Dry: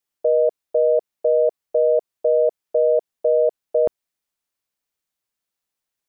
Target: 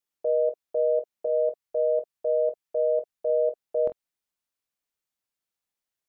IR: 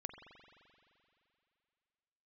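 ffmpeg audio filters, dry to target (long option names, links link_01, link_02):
-filter_complex "[0:a]asettb=1/sr,asplit=3[link_01][link_02][link_03];[link_01]atrim=end=1.264[link_04];[link_02]atrim=start=1.26:end=3.3,asetpts=PTS-STARTPTS,afade=type=in:duration=0.004:curve=qsin,afade=type=out:start_time=2.036:duration=0.004:curve=qsin,equalizer=frequency=440:width=0.84:gain=-5[link_05];[link_03]atrim=start=3.296[link_06];[link_04][link_05]acrossfade=duration=0.004:curve1=hsin:curve2=qsin[link_07];[link_07][link_06]acrossfade=duration=0.004:curve1=qsin:curve2=hsin,alimiter=limit=-14dB:level=0:latency=1:release=79[link_08];[1:a]atrim=start_sample=2205,atrim=end_sample=4410,asetrate=83790,aresample=44100[link_09];[link_08][link_09]afir=irnorm=-1:irlink=0,volume=5dB"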